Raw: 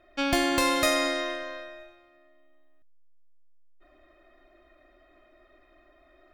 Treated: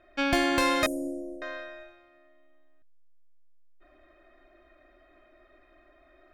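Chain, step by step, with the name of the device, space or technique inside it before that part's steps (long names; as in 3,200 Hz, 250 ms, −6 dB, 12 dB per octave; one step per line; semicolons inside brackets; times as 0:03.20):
0:00.86–0:01.42: inverse Chebyshev band-stop filter 1,200–4,000 Hz, stop band 60 dB
inside a helmet (high-shelf EQ 5,600 Hz −7 dB; hollow resonant body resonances 1,600/2,300 Hz, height 8 dB, ringing for 25 ms)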